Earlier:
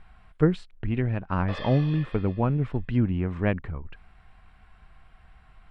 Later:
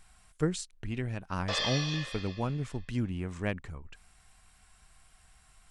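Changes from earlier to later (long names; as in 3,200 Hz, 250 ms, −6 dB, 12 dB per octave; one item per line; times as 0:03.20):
speech −9.0 dB
master: remove high-frequency loss of the air 460 metres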